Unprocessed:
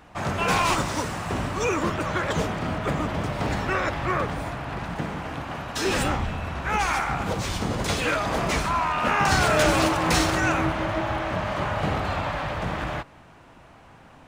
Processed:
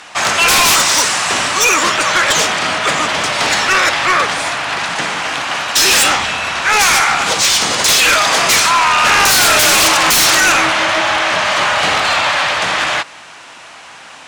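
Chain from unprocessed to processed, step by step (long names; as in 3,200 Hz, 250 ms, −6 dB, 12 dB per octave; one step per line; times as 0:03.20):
meter weighting curve ITU-R 468
in parallel at −4 dB: sine wavefolder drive 16 dB, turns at −2 dBFS
on the sum: level −3 dB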